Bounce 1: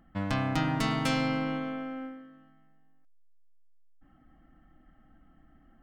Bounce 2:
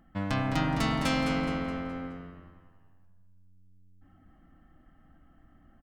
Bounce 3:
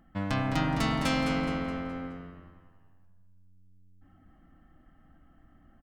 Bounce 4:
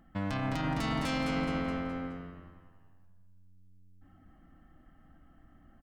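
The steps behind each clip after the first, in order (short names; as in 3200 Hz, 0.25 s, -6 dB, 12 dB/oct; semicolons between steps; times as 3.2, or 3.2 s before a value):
frequency-shifting echo 0.21 s, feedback 42%, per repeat -91 Hz, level -8.5 dB
nothing audible
limiter -23 dBFS, peak gain reduction 9 dB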